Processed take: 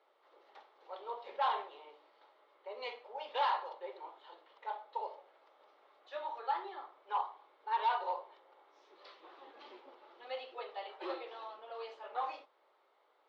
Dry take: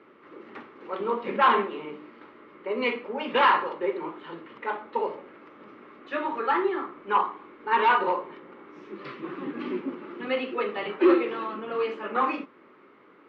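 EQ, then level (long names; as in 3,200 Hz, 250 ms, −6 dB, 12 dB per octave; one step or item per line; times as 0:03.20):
high-pass filter 730 Hz 24 dB per octave
high-frequency loss of the air 53 metres
flat-topped bell 1,700 Hz −15.5 dB
−2.0 dB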